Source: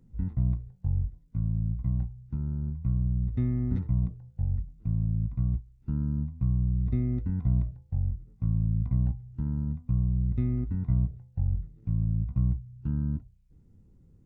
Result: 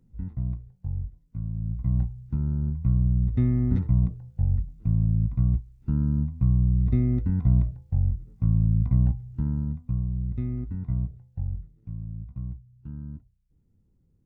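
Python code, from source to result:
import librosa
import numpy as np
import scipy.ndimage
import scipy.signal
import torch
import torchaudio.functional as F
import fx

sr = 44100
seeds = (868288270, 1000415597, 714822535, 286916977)

y = fx.gain(x, sr, db=fx.line((1.54, -3.0), (1.98, 5.0), (9.32, 5.0), (10.07, -2.0), (11.39, -2.0), (12.02, -8.5)))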